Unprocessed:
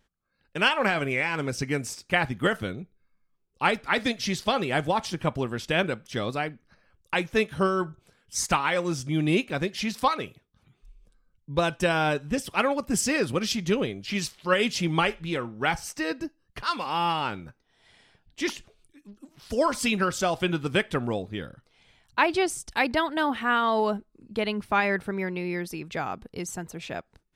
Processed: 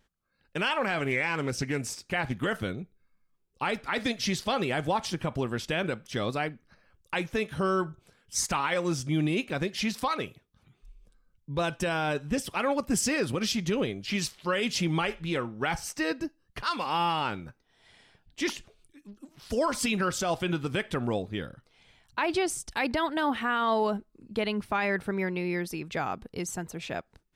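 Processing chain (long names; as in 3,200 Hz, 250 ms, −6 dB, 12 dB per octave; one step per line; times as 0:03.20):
brickwall limiter −17.5 dBFS, peak gain reduction 9 dB
0:00.99–0:02.46: highs frequency-modulated by the lows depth 0.21 ms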